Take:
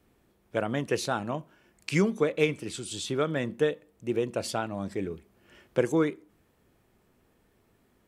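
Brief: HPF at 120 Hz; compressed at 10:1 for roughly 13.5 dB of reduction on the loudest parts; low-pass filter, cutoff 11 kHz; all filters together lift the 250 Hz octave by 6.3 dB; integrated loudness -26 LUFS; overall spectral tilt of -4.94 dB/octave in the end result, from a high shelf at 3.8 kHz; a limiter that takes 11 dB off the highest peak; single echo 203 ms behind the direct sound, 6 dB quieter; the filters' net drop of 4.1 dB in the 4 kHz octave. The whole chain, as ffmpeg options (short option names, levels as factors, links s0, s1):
-af "highpass=120,lowpass=11000,equalizer=f=250:t=o:g=9,highshelf=f=3800:g=4.5,equalizer=f=4000:t=o:g=-8,acompressor=threshold=0.0355:ratio=10,alimiter=level_in=1.19:limit=0.0631:level=0:latency=1,volume=0.841,aecho=1:1:203:0.501,volume=3.35"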